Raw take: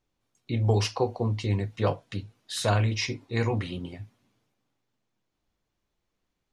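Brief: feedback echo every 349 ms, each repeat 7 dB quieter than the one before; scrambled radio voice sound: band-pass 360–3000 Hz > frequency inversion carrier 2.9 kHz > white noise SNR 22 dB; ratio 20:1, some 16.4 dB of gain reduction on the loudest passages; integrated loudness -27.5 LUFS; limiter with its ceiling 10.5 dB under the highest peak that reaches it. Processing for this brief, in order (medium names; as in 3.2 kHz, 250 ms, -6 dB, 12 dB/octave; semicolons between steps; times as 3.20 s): compression 20:1, threshold -35 dBFS; peak limiter -33 dBFS; band-pass 360–3000 Hz; feedback delay 349 ms, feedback 45%, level -7 dB; frequency inversion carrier 2.9 kHz; white noise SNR 22 dB; trim +20.5 dB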